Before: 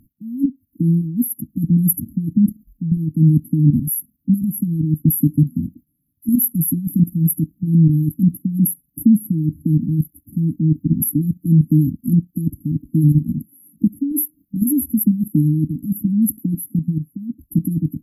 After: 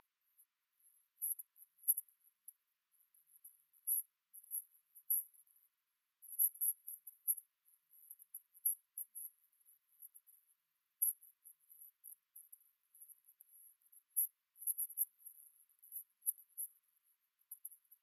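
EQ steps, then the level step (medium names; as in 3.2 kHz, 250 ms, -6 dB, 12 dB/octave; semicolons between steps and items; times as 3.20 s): brick-wall FIR high-pass 930 Hz; low-pass 3.3 kHz 12 dB/octave; +11.5 dB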